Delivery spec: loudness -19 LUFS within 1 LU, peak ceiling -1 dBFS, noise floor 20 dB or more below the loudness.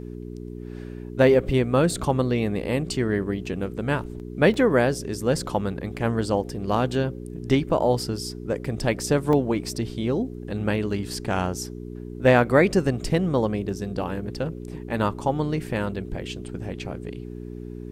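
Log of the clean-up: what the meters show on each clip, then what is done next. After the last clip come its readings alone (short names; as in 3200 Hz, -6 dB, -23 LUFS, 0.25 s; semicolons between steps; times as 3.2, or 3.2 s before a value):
dropouts 2; longest dropout 2.1 ms; hum 60 Hz; harmonics up to 420 Hz; hum level -33 dBFS; loudness -24.5 LUFS; peak -4.5 dBFS; loudness target -19.0 LUFS
-> interpolate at 4.54/9.33, 2.1 ms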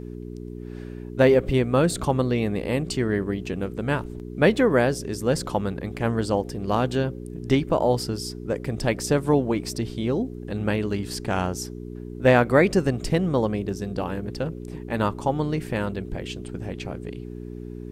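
dropouts 0; hum 60 Hz; harmonics up to 420 Hz; hum level -33 dBFS
-> de-hum 60 Hz, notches 7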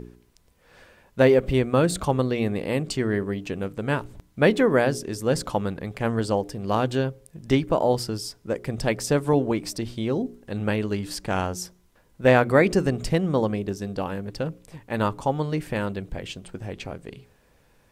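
hum none; loudness -24.5 LUFS; peak -4.5 dBFS; loudness target -19.0 LUFS
-> gain +5.5 dB; limiter -1 dBFS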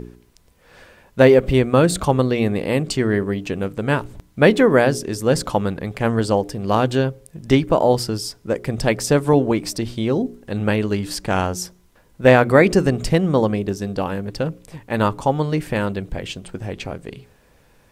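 loudness -19.0 LUFS; peak -1.0 dBFS; noise floor -55 dBFS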